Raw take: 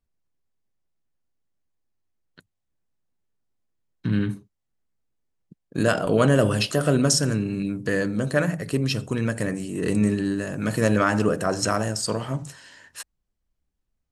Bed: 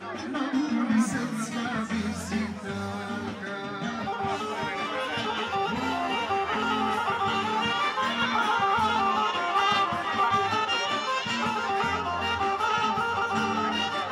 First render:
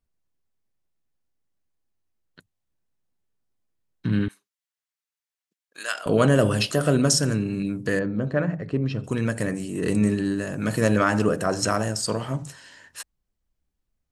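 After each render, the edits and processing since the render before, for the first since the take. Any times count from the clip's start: 4.28–6.06 HPF 1500 Hz; 7.99–9.04 tape spacing loss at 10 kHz 32 dB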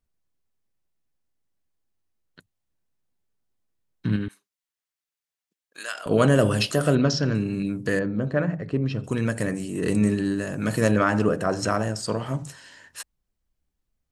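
4.16–6.11 compressor 1.5:1, threshold -33 dBFS; 6.95–7.35 steep low-pass 5100 Hz; 10.91–12.26 high shelf 4900 Hz -9 dB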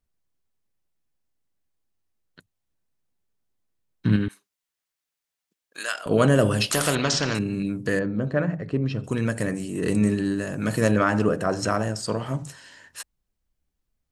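4.06–5.96 gain +4 dB; 6.71–7.39 spectral compressor 2:1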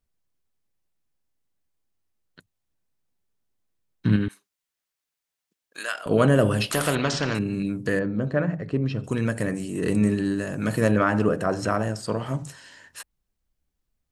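dynamic EQ 6200 Hz, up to -7 dB, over -43 dBFS, Q 0.9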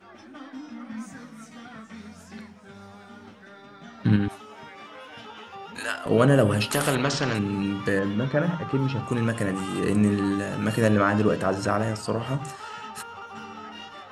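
add bed -13 dB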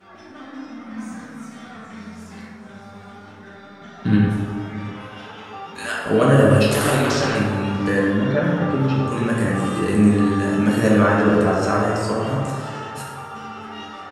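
outdoor echo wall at 110 m, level -16 dB; plate-style reverb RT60 1.8 s, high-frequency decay 0.45×, DRR -4 dB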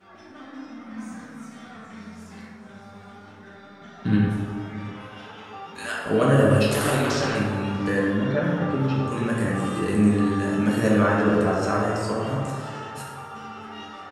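gain -4 dB

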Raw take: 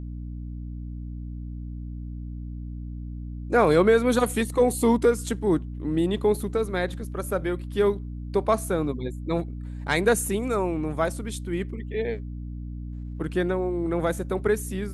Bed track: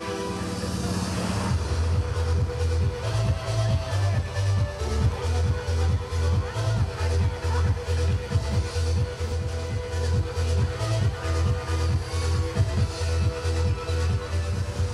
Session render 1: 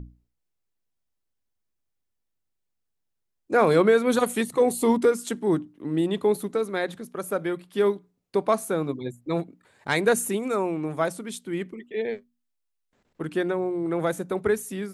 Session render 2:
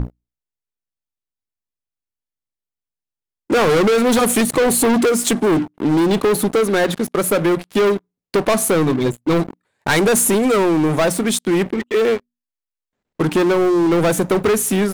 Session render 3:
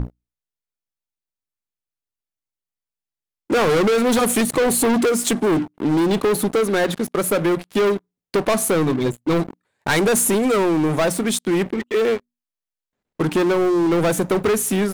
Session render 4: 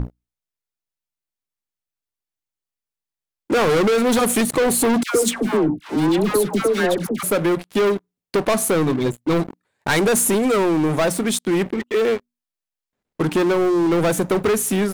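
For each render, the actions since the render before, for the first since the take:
notches 60/120/180/240/300 Hz
sample leveller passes 5; compressor, threshold -13 dBFS, peak gain reduction 3.5 dB
gain -2.5 dB
5.03–7.23 dispersion lows, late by 0.122 s, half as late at 950 Hz

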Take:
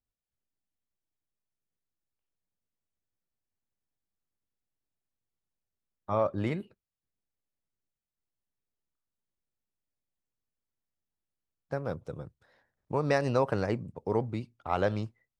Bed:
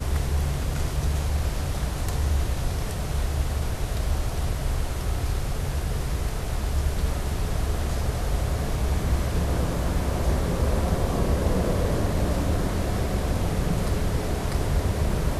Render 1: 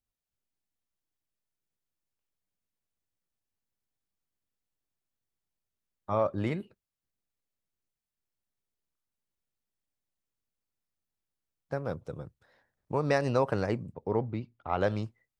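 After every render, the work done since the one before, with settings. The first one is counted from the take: 13.94–14.81 air absorption 190 m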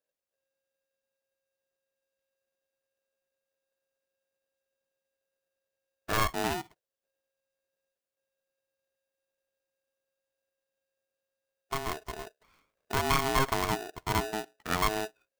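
polarity switched at an audio rate 540 Hz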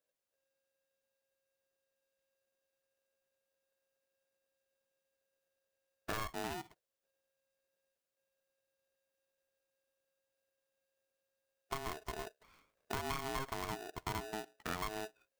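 compressor 6:1, threshold -37 dBFS, peak gain reduction 15 dB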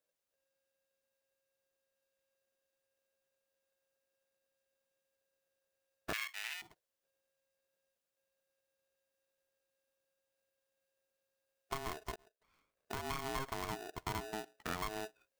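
6.13–6.62 resonant high-pass 2200 Hz, resonance Q 2.9; 12.16–13.25 fade in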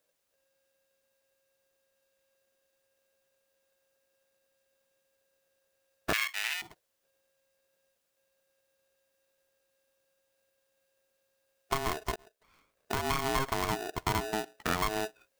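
gain +9.5 dB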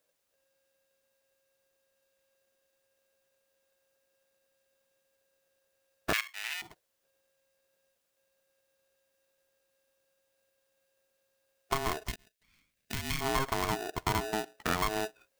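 6.21–6.69 fade in, from -15.5 dB; 12.08–13.21 band shelf 690 Hz -14 dB 2.3 oct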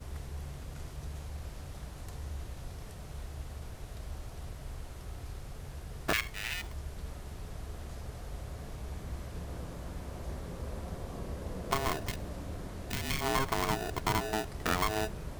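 add bed -16.5 dB

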